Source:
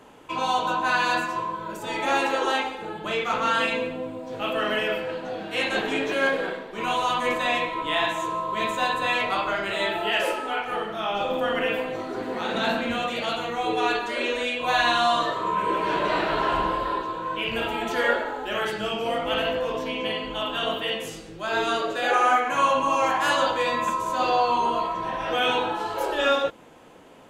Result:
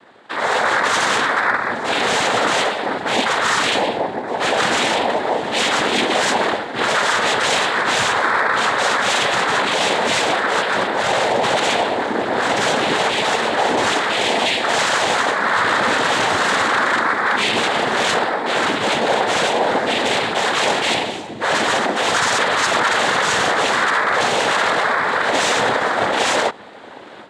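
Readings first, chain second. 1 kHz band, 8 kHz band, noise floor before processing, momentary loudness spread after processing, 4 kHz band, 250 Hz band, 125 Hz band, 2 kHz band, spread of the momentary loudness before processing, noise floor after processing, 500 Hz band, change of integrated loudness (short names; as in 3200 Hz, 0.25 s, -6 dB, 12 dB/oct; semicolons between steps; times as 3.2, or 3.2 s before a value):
+6.5 dB, +16.5 dB, -39 dBFS, 3 LU, +9.5 dB, +6.0 dB, +7.5 dB, +10.0 dB, 8 LU, -29 dBFS, +6.0 dB, +8.0 dB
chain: HPF 580 Hz 6 dB/oct; AGC gain up to 12 dB; running mean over 7 samples; in parallel at -7.5 dB: sine folder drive 15 dB, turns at -2 dBFS; on the sum: noise vocoder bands 6; gain -7.5 dB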